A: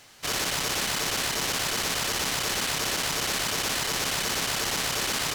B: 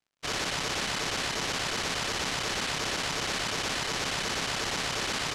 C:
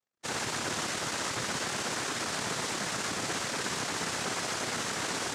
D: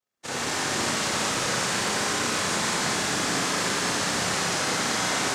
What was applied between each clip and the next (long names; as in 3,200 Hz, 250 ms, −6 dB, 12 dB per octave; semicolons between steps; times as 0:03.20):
dead-zone distortion −45.5 dBFS; high-frequency loss of the air 74 metres
high-frequency loss of the air 110 metres; cochlear-implant simulation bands 3
four-comb reverb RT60 3.3 s, combs from 30 ms, DRR −6.5 dB